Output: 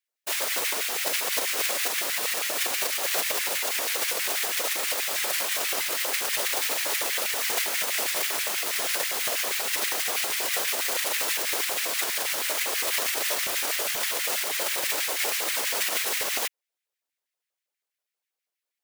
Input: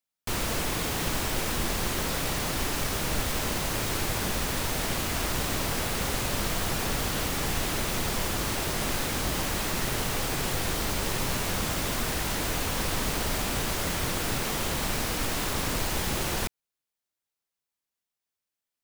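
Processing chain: spectral whitening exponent 0.3; LFO high-pass square 6.2 Hz 520–2000 Hz; whisperiser

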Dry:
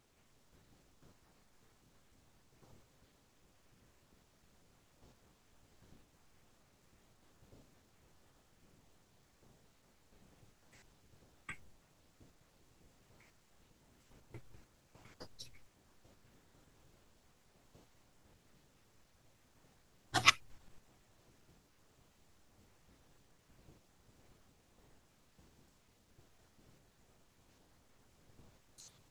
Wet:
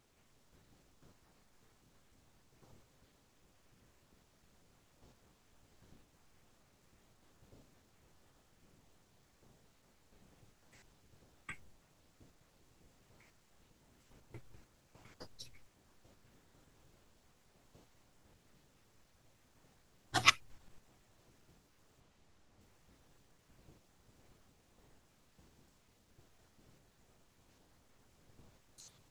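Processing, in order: 22–22.61 high shelf 10000 Hz -11.5 dB

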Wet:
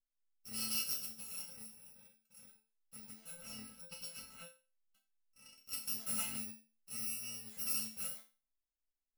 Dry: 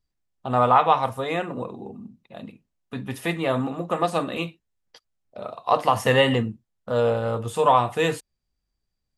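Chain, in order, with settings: FFT order left unsorted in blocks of 128 samples; 3.12–5.73 high shelf 4700 Hz -8 dB; resonator bank A3 minor, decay 0.33 s; gain -2 dB

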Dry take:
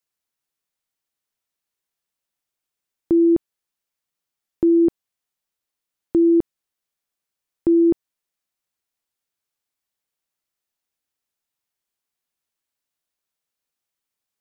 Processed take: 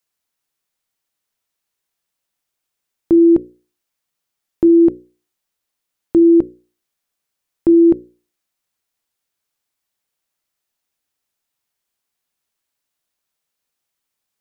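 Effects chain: notches 60/120/180/240/300/360/420/480/540 Hz; gain +5.5 dB

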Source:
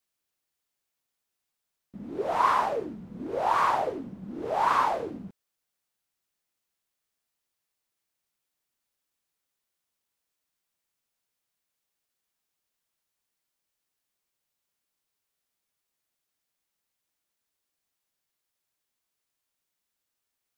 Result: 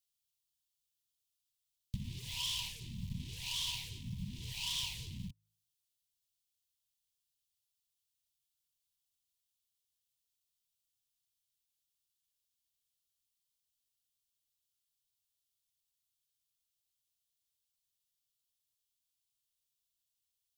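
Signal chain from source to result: de-hum 53.03 Hz, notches 3; sample leveller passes 5; compressor 12:1, threshold -33 dBFS, peak gain reduction 20.5 dB; elliptic band-stop 120–3100 Hz, stop band 40 dB; small resonant body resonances 260/970 Hz, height 17 dB, ringing for 75 ms; gain +8 dB

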